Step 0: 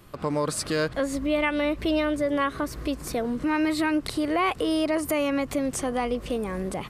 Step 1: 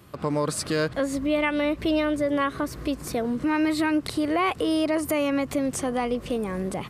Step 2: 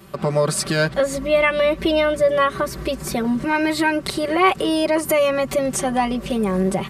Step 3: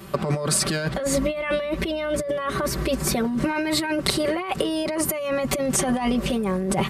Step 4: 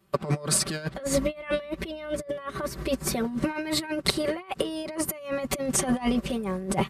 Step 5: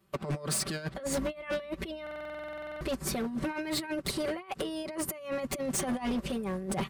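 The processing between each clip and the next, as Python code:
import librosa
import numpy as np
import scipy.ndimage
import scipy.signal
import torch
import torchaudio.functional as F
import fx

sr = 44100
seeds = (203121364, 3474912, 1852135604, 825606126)

y1 = scipy.signal.sosfilt(scipy.signal.butter(2, 74.0, 'highpass', fs=sr, output='sos'), x)
y1 = fx.low_shelf(y1, sr, hz=230.0, db=3.5)
y2 = y1 + 0.91 * np.pad(y1, (int(5.2 * sr / 1000.0), 0))[:len(y1)]
y2 = y2 * 10.0 ** (4.5 / 20.0)
y3 = fx.over_compress(y2, sr, threshold_db=-24.0, ratio=-1.0)
y4 = fx.upward_expand(y3, sr, threshold_db=-36.0, expansion=2.5)
y5 = np.clip(10.0 ** (24.0 / 20.0) * y4, -1.0, 1.0) / 10.0 ** (24.0 / 20.0)
y5 = fx.buffer_glitch(y5, sr, at_s=(2.02,), block=2048, repeats=16)
y5 = y5 * 10.0 ** (-3.5 / 20.0)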